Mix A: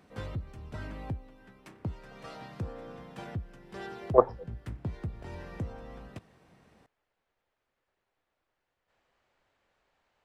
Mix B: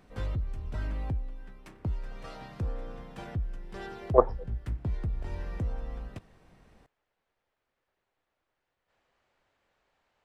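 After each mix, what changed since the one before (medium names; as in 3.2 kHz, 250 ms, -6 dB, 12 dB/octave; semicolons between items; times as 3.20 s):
background: remove high-pass 95 Hz 12 dB/octave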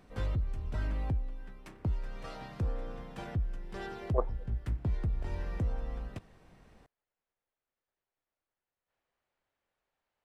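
speech -11.5 dB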